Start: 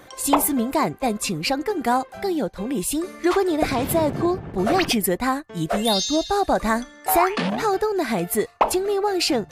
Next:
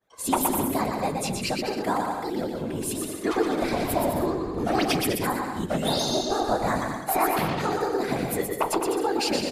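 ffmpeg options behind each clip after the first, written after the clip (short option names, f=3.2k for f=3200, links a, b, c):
-filter_complex "[0:a]agate=range=-33dB:threshold=-33dB:ratio=3:detection=peak,afftfilt=real='hypot(re,im)*cos(2*PI*random(0))':imag='hypot(re,im)*sin(2*PI*random(1))':win_size=512:overlap=0.75,asplit=2[a][b];[b]aecho=0:1:120|204|262.8|304|332.8:0.631|0.398|0.251|0.158|0.1[c];[a][c]amix=inputs=2:normalize=0"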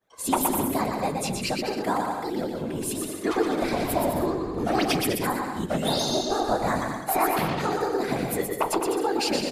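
-af "bandreject=f=50:t=h:w=6,bandreject=f=100:t=h:w=6"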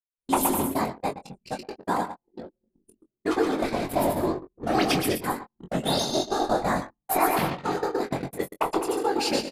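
-filter_complex "[0:a]agate=range=-30dB:threshold=-25dB:ratio=16:detection=peak,anlmdn=0.1,asplit=2[a][b];[b]adelay=22,volume=-7dB[c];[a][c]amix=inputs=2:normalize=0"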